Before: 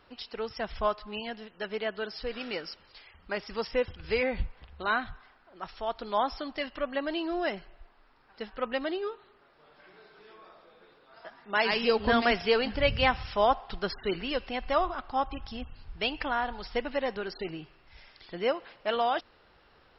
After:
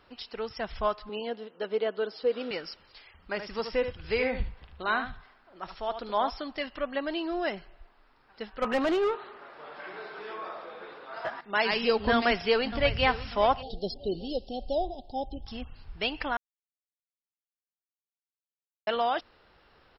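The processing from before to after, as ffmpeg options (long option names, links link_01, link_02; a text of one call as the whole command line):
ffmpeg -i in.wav -filter_complex "[0:a]asettb=1/sr,asplit=3[link_01][link_02][link_03];[link_01]atrim=end=1.094[link_04];[link_02]atrim=start=1.09:end=2.51,asetpts=PTS-STARTPTS,afade=type=in:duration=0.004:curve=qsin,afade=type=out:start_time=1.416:duration=0.004:curve=qsin,highpass=190,equalizer=frequency=270:width_type=q:width=4:gain=5,equalizer=frequency=480:width_type=q:width=4:gain=10,equalizer=frequency=1800:width_type=q:width=4:gain=-6,equalizer=frequency=2500:width_type=q:width=4:gain=-5,lowpass=frequency=4600:width=0.5412,lowpass=frequency=4600:width=1.3066[link_05];[link_03]atrim=start=2.506[link_06];[link_04][link_05]acrossfade=duration=0.004:curve1=hsin:curve2=qsin[link_07];[link_07][link_06]acrossfade=duration=0.004:curve1=qsin:curve2=hsin,asplit=3[link_08][link_09][link_10];[link_08]afade=type=out:start_time=3.38:duration=0.02[link_11];[link_09]aecho=1:1:75:0.355,afade=type=in:start_time=3.38:duration=0.02,afade=type=out:start_time=6.29:duration=0.02[link_12];[link_10]afade=type=in:start_time=6.29:duration=0.02[link_13];[link_11][link_12][link_13]amix=inputs=3:normalize=0,asettb=1/sr,asplit=3[link_14][link_15][link_16];[link_14]atrim=end=8.624[link_17];[link_15]atrim=start=8.62:end=11.41,asetpts=PTS-STARTPTS,afade=type=in:duration=0.004:curve=qsin,afade=type=out:start_time=2.786:duration=0.004:curve=qsin,asplit=2[link_18][link_19];[link_19]highpass=frequency=720:poles=1,volume=25dB,asoftclip=type=tanh:threshold=-17.5dB[link_20];[link_18][link_20]amix=inputs=2:normalize=0,lowpass=frequency=1300:poles=1,volume=-6dB[link_21];[link_16]atrim=start=11.406[link_22];[link_17][link_21]acrossfade=duration=0.004:curve1=hsin:curve2=qsin[link_23];[link_23][link_22]acrossfade=duration=0.004:curve1=qsin:curve2=hsin,asplit=2[link_24][link_25];[link_25]afade=type=in:start_time=12.13:duration=0.01,afade=type=out:start_time=13.09:duration=0.01,aecho=0:1:590|1180|1770:0.199526|0.0698342|0.024442[link_26];[link_24][link_26]amix=inputs=2:normalize=0,asplit=3[link_27][link_28][link_29];[link_27]afade=type=out:start_time=13.61:duration=0.02[link_30];[link_28]asuperstop=centerf=1600:order=12:qfactor=0.63,afade=type=in:start_time=13.61:duration=0.02,afade=type=out:start_time=15.46:duration=0.02[link_31];[link_29]afade=type=in:start_time=15.46:duration=0.02[link_32];[link_30][link_31][link_32]amix=inputs=3:normalize=0,asplit=3[link_33][link_34][link_35];[link_33]atrim=end=16.37,asetpts=PTS-STARTPTS,afade=type=out:start_time=16.366:duration=0.004:curve=hsin[link_36];[link_34]atrim=start=16.37:end=18.87,asetpts=PTS-STARTPTS,volume=0[link_37];[link_35]atrim=start=18.87,asetpts=PTS-STARTPTS,afade=type=in:duration=0.004:curve=hsin[link_38];[link_36][link_37][link_38]concat=n=3:v=0:a=1" out.wav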